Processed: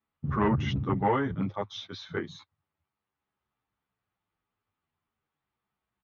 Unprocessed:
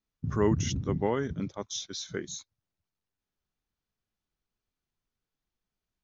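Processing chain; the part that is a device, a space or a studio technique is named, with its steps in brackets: barber-pole flanger into a guitar amplifier (endless flanger 10.1 ms -0.39 Hz; saturation -25 dBFS, distortion -14 dB; cabinet simulation 77–3400 Hz, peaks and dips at 100 Hz +4 dB, 850 Hz +7 dB, 1.2 kHz +8 dB, 2 kHz +3 dB); trim +6 dB

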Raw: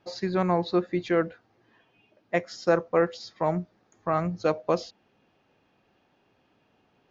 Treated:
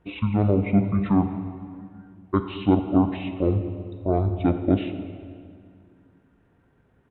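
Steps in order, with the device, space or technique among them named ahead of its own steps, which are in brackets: monster voice (pitch shift -10 st; bass shelf 120 Hz +7.5 dB; reverberation RT60 2.1 s, pre-delay 21 ms, DRR 8 dB); trim +2 dB

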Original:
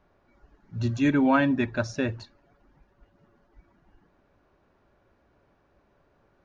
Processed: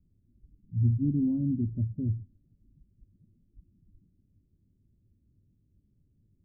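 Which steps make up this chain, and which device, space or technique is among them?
the neighbour's flat through the wall (low-pass 240 Hz 24 dB/octave; peaking EQ 100 Hz +6.5 dB 0.65 oct)

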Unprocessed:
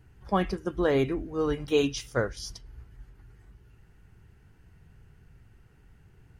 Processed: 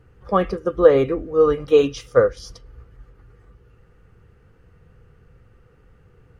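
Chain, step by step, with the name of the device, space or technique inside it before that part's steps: inside a helmet (treble shelf 5.7 kHz -8.5 dB; small resonant body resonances 500/1200 Hz, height 16 dB, ringing for 50 ms); trim +3 dB

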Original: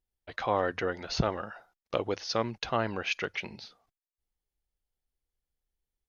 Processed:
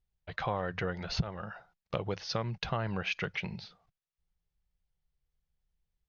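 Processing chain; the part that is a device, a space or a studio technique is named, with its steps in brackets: jukebox (low-pass 5 kHz 12 dB/octave; resonant low shelf 210 Hz +6 dB, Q 3; compression 5:1, threshold -29 dBFS, peak gain reduction 15 dB)

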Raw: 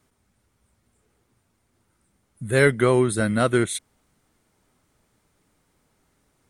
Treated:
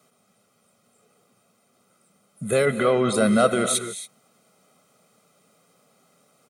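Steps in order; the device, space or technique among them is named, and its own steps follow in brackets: PA system with an anti-feedback notch (high-pass 190 Hz 24 dB/octave; Butterworth band-stop 1.8 kHz, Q 6.9; peak limiter -17 dBFS, peak gain reduction 11.5 dB); 2.65–3.13 s: low-pass 2.8 kHz -> 6.9 kHz 24 dB/octave; bass shelf 370 Hz +4.5 dB; comb 1.6 ms, depth 70%; gated-style reverb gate 300 ms rising, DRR 9.5 dB; trim +5 dB

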